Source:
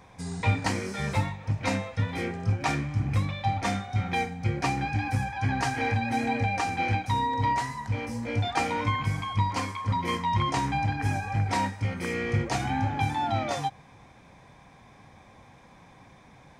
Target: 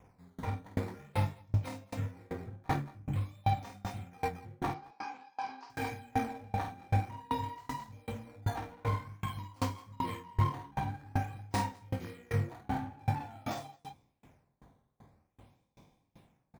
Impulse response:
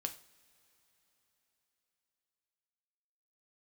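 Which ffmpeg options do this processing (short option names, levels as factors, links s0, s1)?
-filter_complex "[0:a]flanger=delay=19:depth=4.6:speed=2.6,acrossover=split=2400[s0][s1];[s0]adynamicsmooth=sensitivity=3.5:basefreq=780[s2];[s1]acrusher=samples=10:mix=1:aa=0.000001:lfo=1:lforange=16:lforate=0.49[s3];[s2][s3]amix=inputs=2:normalize=0,asettb=1/sr,asplit=3[s4][s5][s6];[s4]atrim=end=4.694[s7];[s5]atrim=start=4.69:end=5.7,asetpts=PTS-STARTPTS,afade=t=in:d=0.004:c=qsin,afade=t=out:st=1.006:d=0.004:c=qsin,highpass=f=330:w=0.5412,highpass=f=330:w=1.3066,equalizer=f=330:t=q:w=4:g=-8,equalizer=f=580:t=q:w=4:g=-7,equalizer=f=1000:t=q:w=4:g=7,equalizer=f=1800:t=q:w=4:g=-7,equalizer=f=3400:t=q:w=4:g=-4,equalizer=f=5000:t=q:w=4:g=7,lowpass=f=5500:w=0.5412,lowpass=f=5500:w=1.3066[s8];[s6]atrim=start=5.696[s9];[s7][s8]acrossfade=d=0.004:c1=hsin:c2=qsin[s10];[s10][s9]acrossfade=d=0.004:c1=qsin:c2=hsin,asplit=2[s11][s12];[s12]aecho=0:1:49.56|218.7:0.794|0.398[s13];[s11][s13]amix=inputs=2:normalize=0,aeval=exprs='val(0)*pow(10,-31*if(lt(mod(2.6*n/s,1),2*abs(2.6)/1000),1-mod(2.6*n/s,1)/(2*abs(2.6)/1000),(mod(2.6*n/s,1)-2*abs(2.6)/1000)/(1-2*abs(2.6)/1000))/20)':c=same"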